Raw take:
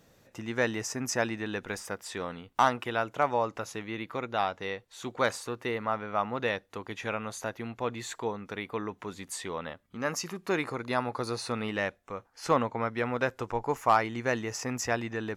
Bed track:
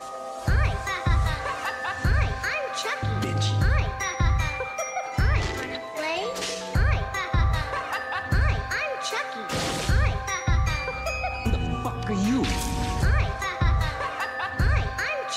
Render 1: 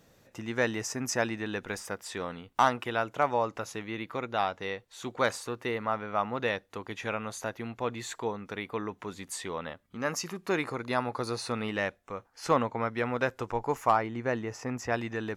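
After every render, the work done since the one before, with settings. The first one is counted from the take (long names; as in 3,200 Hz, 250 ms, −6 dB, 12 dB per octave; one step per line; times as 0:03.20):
0:13.90–0:14.92: high-shelf EQ 2,100 Hz → 3,200 Hz −11.5 dB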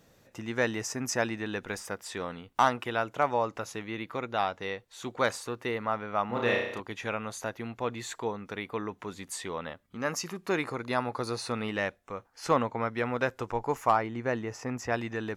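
0:06.26–0:06.80: flutter between parallel walls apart 5.7 metres, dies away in 0.75 s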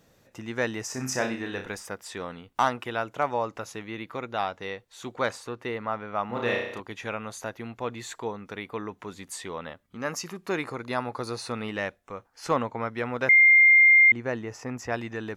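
0:00.89–0:01.69: flutter between parallel walls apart 5.3 metres, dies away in 0.34 s
0:05.19–0:06.23: high-shelf EQ 6,800 Hz −7.5 dB
0:13.29–0:14.12: beep over 2,110 Hz −12.5 dBFS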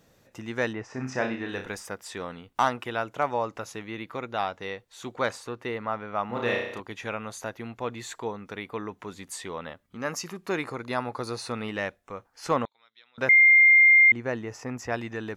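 0:00.72–0:01.47: low-pass filter 1,900 Hz → 4,500 Hz
0:12.65–0:13.18: resonant band-pass 3,700 Hz, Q 12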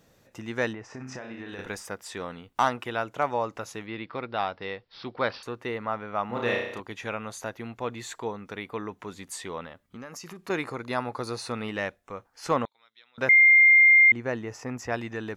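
0:00.74–0:01.59: downward compressor 8 to 1, threshold −35 dBFS
0:03.86–0:05.43: bad sample-rate conversion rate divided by 4×, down none, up filtered
0:09.64–0:10.50: downward compressor 8 to 1, threshold −37 dBFS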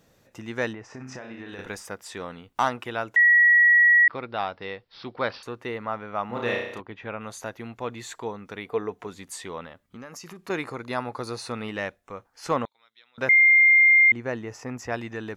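0:03.16–0:04.08: beep over 1,920 Hz −13 dBFS
0:06.81–0:07.21: high-frequency loss of the air 330 metres
0:08.65–0:09.07: hollow resonant body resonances 450/700 Hz, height 10 dB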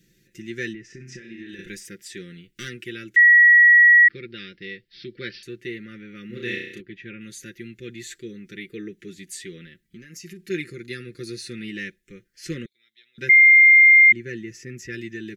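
elliptic band-stop filter 390–1,800 Hz, stop band 60 dB
comb filter 5.7 ms, depth 71%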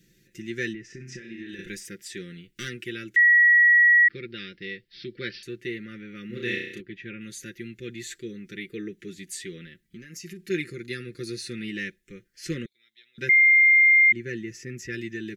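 brickwall limiter −13 dBFS, peak gain reduction 5 dB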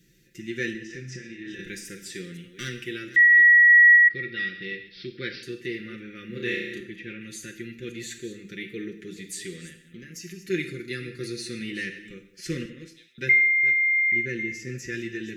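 delay that plays each chunk backwards 264 ms, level −14 dB
reverb whose tail is shaped and stops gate 250 ms falling, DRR 6.5 dB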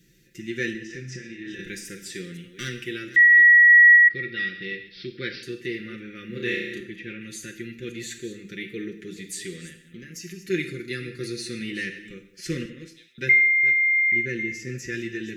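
level +1.5 dB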